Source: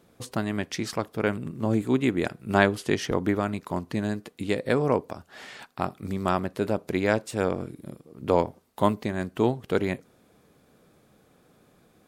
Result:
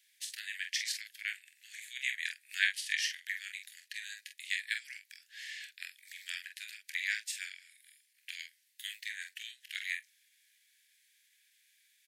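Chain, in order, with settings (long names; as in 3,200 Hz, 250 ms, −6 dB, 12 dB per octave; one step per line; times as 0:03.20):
on a send: ambience of single reflections 25 ms −11 dB, 45 ms −7 dB
on the sum: pitch shifter −0.5 semitones
Butterworth high-pass 1,700 Hz 96 dB per octave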